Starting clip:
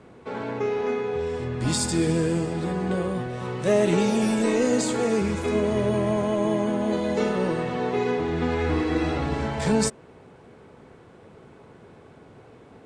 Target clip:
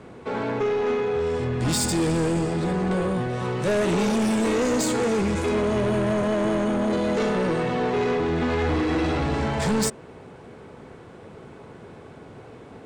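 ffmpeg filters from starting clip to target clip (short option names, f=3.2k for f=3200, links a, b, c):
-af "asoftclip=type=tanh:threshold=-24.5dB,volume=5.5dB"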